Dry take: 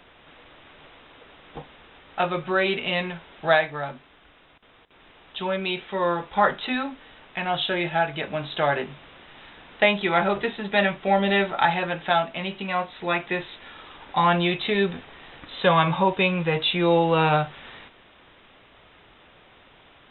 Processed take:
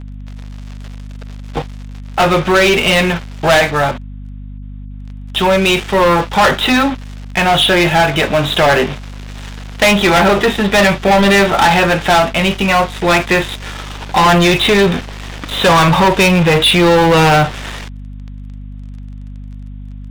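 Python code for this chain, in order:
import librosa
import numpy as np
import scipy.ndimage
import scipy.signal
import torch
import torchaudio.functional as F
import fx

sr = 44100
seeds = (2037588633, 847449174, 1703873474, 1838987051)

y = fx.leveller(x, sr, passes=5)
y = fx.add_hum(y, sr, base_hz=50, snr_db=15)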